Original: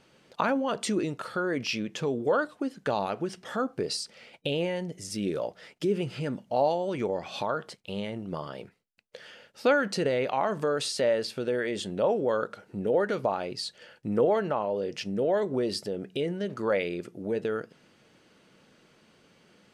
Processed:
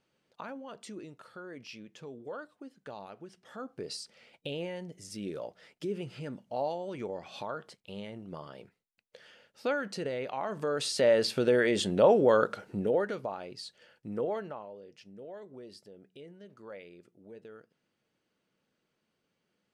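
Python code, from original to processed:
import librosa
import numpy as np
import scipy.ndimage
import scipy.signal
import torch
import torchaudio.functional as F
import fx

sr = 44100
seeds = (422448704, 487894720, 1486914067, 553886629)

y = fx.gain(x, sr, db=fx.line((3.38, -16.0), (3.91, -8.0), (10.41, -8.0), (11.27, 4.0), (12.62, 4.0), (13.25, -9.0), (14.36, -9.0), (14.83, -19.5)))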